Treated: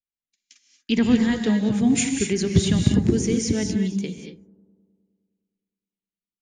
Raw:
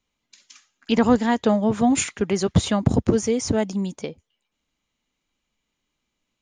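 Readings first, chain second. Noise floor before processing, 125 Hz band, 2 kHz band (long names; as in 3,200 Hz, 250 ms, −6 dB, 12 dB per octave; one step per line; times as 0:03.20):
−79 dBFS, +2.0 dB, 0.0 dB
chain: noise gate −46 dBFS, range −26 dB
flat-topped bell 830 Hz −14 dB
on a send: bucket-brigade delay 103 ms, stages 1,024, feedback 71%, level −20.5 dB
on the sum: reverb whose tail is shaped and stops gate 260 ms rising, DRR 4 dB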